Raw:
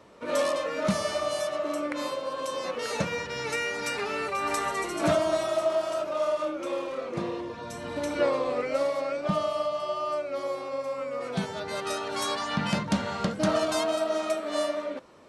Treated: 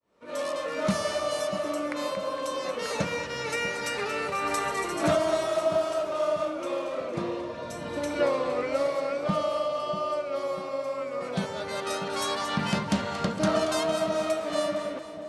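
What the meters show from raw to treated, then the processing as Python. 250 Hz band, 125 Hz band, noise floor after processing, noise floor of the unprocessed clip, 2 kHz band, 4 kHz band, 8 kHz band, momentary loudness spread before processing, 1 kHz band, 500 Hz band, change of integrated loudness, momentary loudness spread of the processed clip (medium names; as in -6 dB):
+0.5 dB, +0.5 dB, -37 dBFS, -38 dBFS, +0.5 dB, +0.5 dB, +0.5 dB, 7 LU, +0.5 dB, +0.5 dB, +0.5 dB, 6 LU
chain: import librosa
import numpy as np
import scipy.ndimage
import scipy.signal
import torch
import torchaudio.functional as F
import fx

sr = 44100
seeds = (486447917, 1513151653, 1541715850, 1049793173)

y = fx.fade_in_head(x, sr, length_s=0.79)
y = fx.echo_split(y, sr, split_hz=780.0, low_ms=642, high_ms=230, feedback_pct=52, wet_db=-11)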